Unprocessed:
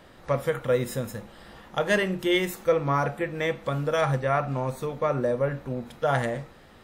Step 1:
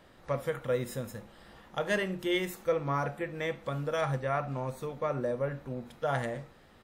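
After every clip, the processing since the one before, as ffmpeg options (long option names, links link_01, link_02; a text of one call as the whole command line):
ffmpeg -i in.wav -af "aecho=1:1:71:0.0708,volume=-6.5dB" out.wav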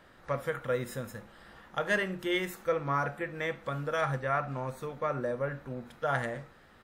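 ffmpeg -i in.wav -af "equalizer=frequency=1500:width=1.6:gain=6.5,volume=-1.5dB" out.wav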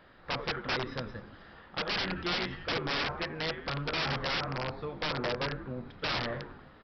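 ffmpeg -i in.wav -filter_complex "[0:a]asplit=8[link_01][link_02][link_03][link_04][link_05][link_06][link_07][link_08];[link_02]adelay=88,afreqshift=-110,volume=-12dB[link_09];[link_03]adelay=176,afreqshift=-220,volume=-16.2dB[link_10];[link_04]adelay=264,afreqshift=-330,volume=-20.3dB[link_11];[link_05]adelay=352,afreqshift=-440,volume=-24.5dB[link_12];[link_06]adelay=440,afreqshift=-550,volume=-28.6dB[link_13];[link_07]adelay=528,afreqshift=-660,volume=-32.8dB[link_14];[link_08]adelay=616,afreqshift=-770,volume=-36.9dB[link_15];[link_01][link_09][link_10][link_11][link_12][link_13][link_14][link_15]amix=inputs=8:normalize=0,aresample=11025,aeval=exprs='(mod(20*val(0)+1,2)-1)/20':channel_layout=same,aresample=44100" out.wav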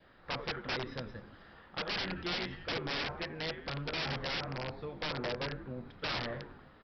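ffmpeg -i in.wav -af "adynamicequalizer=threshold=0.00282:dfrequency=1200:dqfactor=2.2:tfrequency=1200:tqfactor=2.2:attack=5:release=100:ratio=0.375:range=2.5:mode=cutabove:tftype=bell,volume=-3.5dB" out.wav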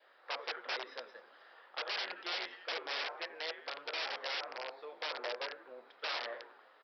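ffmpeg -i in.wav -af "highpass=frequency=470:width=0.5412,highpass=frequency=470:width=1.3066,volume=-1.5dB" out.wav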